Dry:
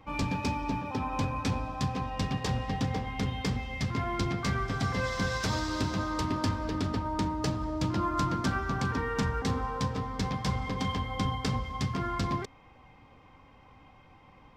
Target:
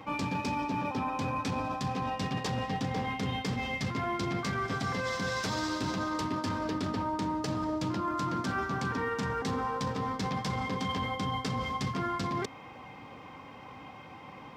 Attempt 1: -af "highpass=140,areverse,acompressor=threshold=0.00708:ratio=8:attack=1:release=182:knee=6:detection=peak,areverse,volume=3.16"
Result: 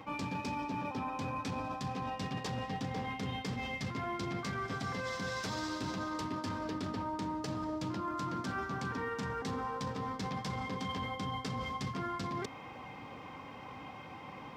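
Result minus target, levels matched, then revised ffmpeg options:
compression: peak gain reduction +5 dB
-af "highpass=140,areverse,acompressor=threshold=0.0141:ratio=8:attack=1:release=182:knee=6:detection=peak,areverse,volume=3.16"

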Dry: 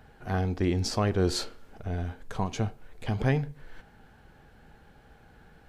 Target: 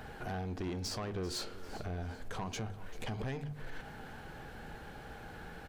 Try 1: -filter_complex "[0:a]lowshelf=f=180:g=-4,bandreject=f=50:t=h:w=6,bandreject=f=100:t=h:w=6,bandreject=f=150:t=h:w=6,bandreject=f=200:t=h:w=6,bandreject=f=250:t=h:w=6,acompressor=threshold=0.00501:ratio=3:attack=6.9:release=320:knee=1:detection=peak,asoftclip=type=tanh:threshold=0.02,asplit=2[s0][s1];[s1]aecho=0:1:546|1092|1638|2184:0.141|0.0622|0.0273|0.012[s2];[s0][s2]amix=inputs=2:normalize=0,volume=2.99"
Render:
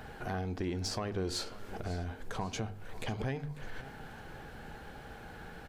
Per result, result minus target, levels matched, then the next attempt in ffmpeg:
echo 154 ms late; saturation: distortion -11 dB
-filter_complex "[0:a]lowshelf=f=180:g=-4,bandreject=f=50:t=h:w=6,bandreject=f=100:t=h:w=6,bandreject=f=150:t=h:w=6,bandreject=f=200:t=h:w=6,bandreject=f=250:t=h:w=6,acompressor=threshold=0.00501:ratio=3:attack=6.9:release=320:knee=1:detection=peak,asoftclip=type=tanh:threshold=0.02,asplit=2[s0][s1];[s1]aecho=0:1:392|784|1176|1568:0.141|0.0622|0.0273|0.012[s2];[s0][s2]amix=inputs=2:normalize=0,volume=2.99"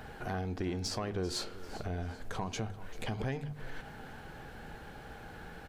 saturation: distortion -11 dB
-filter_complex "[0:a]lowshelf=f=180:g=-4,bandreject=f=50:t=h:w=6,bandreject=f=100:t=h:w=6,bandreject=f=150:t=h:w=6,bandreject=f=200:t=h:w=6,bandreject=f=250:t=h:w=6,acompressor=threshold=0.00501:ratio=3:attack=6.9:release=320:knee=1:detection=peak,asoftclip=type=tanh:threshold=0.0075,asplit=2[s0][s1];[s1]aecho=0:1:392|784|1176|1568:0.141|0.0622|0.0273|0.012[s2];[s0][s2]amix=inputs=2:normalize=0,volume=2.99"

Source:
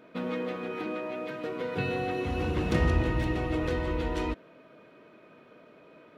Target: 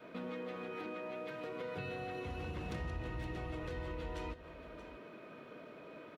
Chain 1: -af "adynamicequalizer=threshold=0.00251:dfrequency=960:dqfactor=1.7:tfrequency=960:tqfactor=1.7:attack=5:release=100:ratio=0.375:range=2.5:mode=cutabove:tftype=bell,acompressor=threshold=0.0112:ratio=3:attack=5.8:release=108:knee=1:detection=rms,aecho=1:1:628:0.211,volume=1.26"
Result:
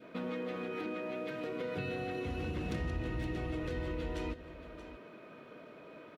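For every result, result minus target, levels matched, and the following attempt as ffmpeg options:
1 kHz band -4.0 dB; compression: peak gain reduction -4 dB
-af "adynamicequalizer=threshold=0.00251:dfrequency=270:dqfactor=1.7:tfrequency=270:tqfactor=1.7:attack=5:release=100:ratio=0.375:range=2.5:mode=cutabove:tftype=bell,acompressor=threshold=0.0112:ratio=3:attack=5.8:release=108:knee=1:detection=rms,aecho=1:1:628:0.211,volume=1.26"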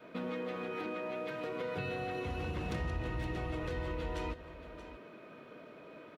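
compression: peak gain reduction -4.5 dB
-af "adynamicequalizer=threshold=0.00251:dfrequency=270:dqfactor=1.7:tfrequency=270:tqfactor=1.7:attack=5:release=100:ratio=0.375:range=2.5:mode=cutabove:tftype=bell,acompressor=threshold=0.00531:ratio=3:attack=5.8:release=108:knee=1:detection=rms,aecho=1:1:628:0.211,volume=1.26"

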